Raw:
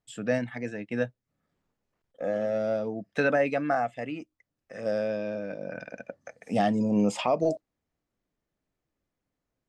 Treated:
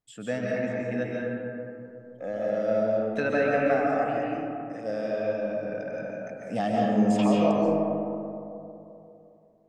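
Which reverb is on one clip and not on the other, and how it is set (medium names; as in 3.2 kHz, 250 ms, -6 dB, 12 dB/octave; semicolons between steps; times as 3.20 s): algorithmic reverb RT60 3 s, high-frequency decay 0.3×, pre-delay 100 ms, DRR -4 dB; trim -4 dB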